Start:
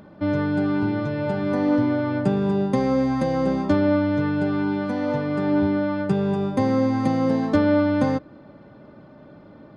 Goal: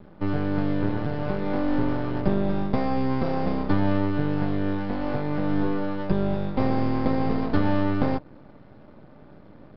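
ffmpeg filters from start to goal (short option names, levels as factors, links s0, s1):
-af "lowshelf=f=270:g=7.5,aresample=11025,aeval=exprs='max(val(0),0)':c=same,aresample=44100,volume=0.794"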